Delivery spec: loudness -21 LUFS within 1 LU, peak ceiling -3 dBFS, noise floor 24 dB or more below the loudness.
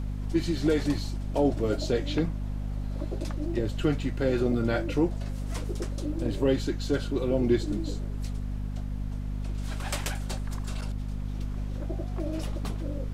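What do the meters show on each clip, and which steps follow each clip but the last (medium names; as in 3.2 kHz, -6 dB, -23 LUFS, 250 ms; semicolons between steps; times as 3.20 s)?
hum 50 Hz; highest harmonic 250 Hz; hum level -30 dBFS; noise floor -34 dBFS; noise floor target -54 dBFS; loudness -30.0 LUFS; peak level -12.0 dBFS; loudness target -21.0 LUFS
-> de-hum 50 Hz, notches 5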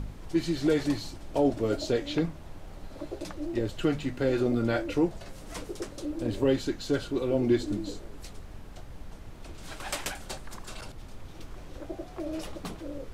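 hum not found; noise floor -45 dBFS; noise floor target -55 dBFS
-> noise print and reduce 10 dB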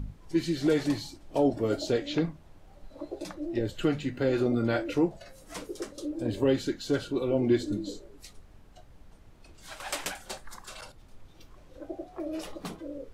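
noise floor -54 dBFS; loudness -30.0 LUFS; peak level -13.5 dBFS; loudness target -21.0 LUFS
-> trim +9 dB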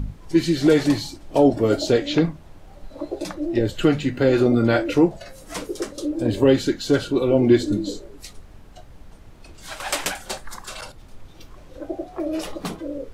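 loudness -21.0 LUFS; peak level -4.5 dBFS; noise floor -45 dBFS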